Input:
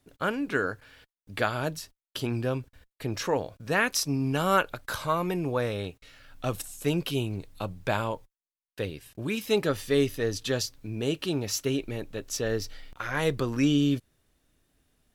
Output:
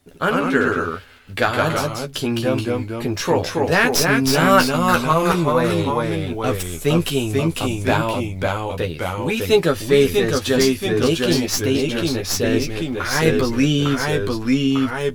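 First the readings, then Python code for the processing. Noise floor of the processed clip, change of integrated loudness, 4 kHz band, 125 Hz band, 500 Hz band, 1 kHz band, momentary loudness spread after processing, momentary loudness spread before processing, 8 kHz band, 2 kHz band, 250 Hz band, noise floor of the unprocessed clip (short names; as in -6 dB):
-33 dBFS, +10.0 dB, +11.0 dB, +10.0 dB, +11.0 dB, +11.5 dB, 8 LU, 11 LU, +9.5 dB, +10.5 dB, +10.5 dB, under -85 dBFS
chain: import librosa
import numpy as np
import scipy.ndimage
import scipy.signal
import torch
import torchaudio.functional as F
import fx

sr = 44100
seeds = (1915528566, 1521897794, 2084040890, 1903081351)

y = fx.tracing_dist(x, sr, depth_ms=0.046)
y = fx.echo_pitch(y, sr, ms=80, semitones=-1, count=2, db_per_echo=-3.0)
y = fx.doubler(y, sr, ms=12.0, db=-5)
y = y * librosa.db_to_amplitude(7.5)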